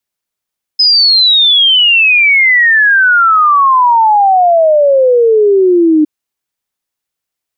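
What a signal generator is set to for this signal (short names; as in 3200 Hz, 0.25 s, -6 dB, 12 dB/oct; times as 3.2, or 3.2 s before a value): log sweep 5100 Hz -> 300 Hz 5.26 s -4.5 dBFS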